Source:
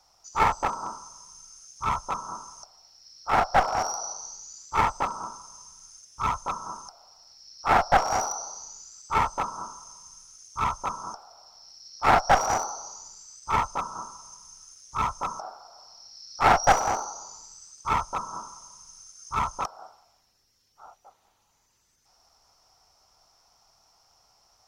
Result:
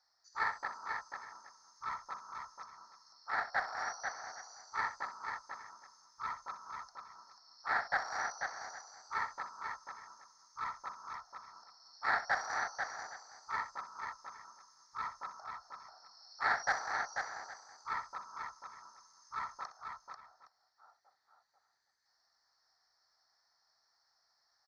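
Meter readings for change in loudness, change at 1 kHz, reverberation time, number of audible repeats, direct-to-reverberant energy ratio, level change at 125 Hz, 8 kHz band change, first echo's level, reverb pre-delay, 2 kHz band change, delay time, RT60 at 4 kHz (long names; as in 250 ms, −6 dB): −13.0 dB, −14.0 dB, no reverb audible, 3, no reverb audible, −26.5 dB, −17.5 dB, −12.5 dB, no reverb audible, −4.5 dB, 62 ms, no reverb audible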